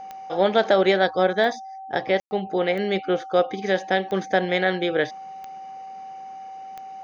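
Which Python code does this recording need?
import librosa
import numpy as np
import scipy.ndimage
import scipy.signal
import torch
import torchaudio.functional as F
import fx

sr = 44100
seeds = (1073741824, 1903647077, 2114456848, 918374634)

y = fx.fix_declick_ar(x, sr, threshold=10.0)
y = fx.notch(y, sr, hz=770.0, q=30.0)
y = fx.fix_ambience(y, sr, seeds[0], print_start_s=6.24, print_end_s=6.74, start_s=2.2, end_s=2.31)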